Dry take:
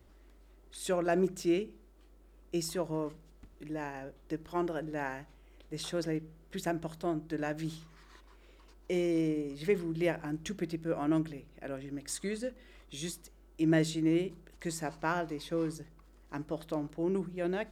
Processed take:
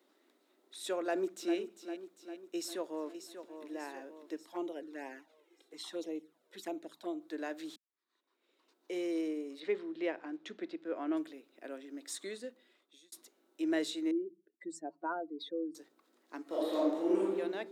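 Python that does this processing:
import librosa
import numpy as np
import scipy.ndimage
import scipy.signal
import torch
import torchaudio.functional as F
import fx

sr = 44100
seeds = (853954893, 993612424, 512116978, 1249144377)

y = fx.echo_throw(x, sr, start_s=1.02, length_s=0.54, ms=400, feedback_pct=60, wet_db=-10.0)
y = fx.echo_throw(y, sr, start_s=2.55, length_s=1.09, ms=590, feedback_pct=55, wet_db=-9.5)
y = fx.env_flanger(y, sr, rest_ms=3.0, full_db=-30.0, at=(4.45, 7.2), fade=0.02)
y = fx.lowpass(y, sr, hz=3700.0, slope=12, at=(9.6, 11.17))
y = fx.spec_expand(y, sr, power=2.4, at=(14.11, 15.75))
y = fx.reverb_throw(y, sr, start_s=16.42, length_s=0.95, rt60_s=1.1, drr_db=-8.5)
y = fx.edit(y, sr, fx.fade_in_span(start_s=7.76, length_s=1.3, curve='qua'),
    fx.fade_out_span(start_s=12.25, length_s=0.87), tone=tone)
y = scipy.signal.sosfilt(scipy.signal.butter(8, 240.0, 'highpass', fs=sr, output='sos'), y)
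y = fx.peak_eq(y, sr, hz=3800.0, db=8.0, octaves=0.22)
y = y * 10.0 ** (-4.5 / 20.0)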